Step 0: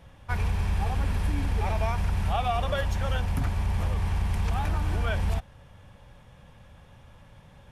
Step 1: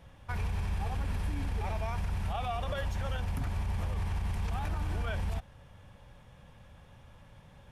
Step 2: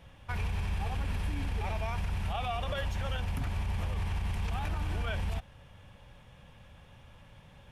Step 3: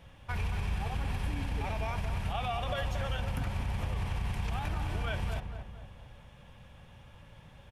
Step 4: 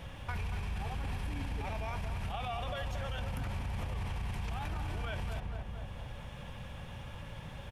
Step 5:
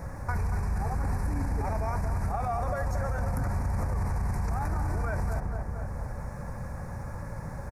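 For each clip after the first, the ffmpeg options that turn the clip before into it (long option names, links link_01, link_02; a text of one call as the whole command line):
ffmpeg -i in.wav -af "alimiter=limit=-22.5dB:level=0:latency=1:release=61,volume=-3dB" out.wav
ffmpeg -i in.wav -af "equalizer=frequency=2800:width_type=o:width=0.86:gain=5" out.wav
ffmpeg -i in.wav -filter_complex "[0:a]asplit=2[link_01][link_02];[link_02]adelay=228,lowpass=frequency=1600:poles=1,volume=-7dB,asplit=2[link_03][link_04];[link_04]adelay=228,lowpass=frequency=1600:poles=1,volume=0.49,asplit=2[link_05][link_06];[link_06]adelay=228,lowpass=frequency=1600:poles=1,volume=0.49,asplit=2[link_07][link_08];[link_08]adelay=228,lowpass=frequency=1600:poles=1,volume=0.49,asplit=2[link_09][link_10];[link_10]adelay=228,lowpass=frequency=1600:poles=1,volume=0.49,asplit=2[link_11][link_12];[link_12]adelay=228,lowpass=frequency=1600:poles=1,volume=0.49[link_13];[link_01][link_03][link_05][link_07][link_09][link_11][link_13]amix=inputs=7:normalize=0" out.wav
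ffmpeg -i in.wav -af "alimiter=level_in=5dB:limit=-24dB:level=0:latency=1:release=25,volume=-5dB,acompressor=threshold=-48dB:ratio=2.5,volume=9dB" out.wav
ffmpeg -i in.wav -af "asuperstop=centerf=3100:order=4:qfactor=0.83,aecho=1:1:722:0.158,volume=8dB" out.wav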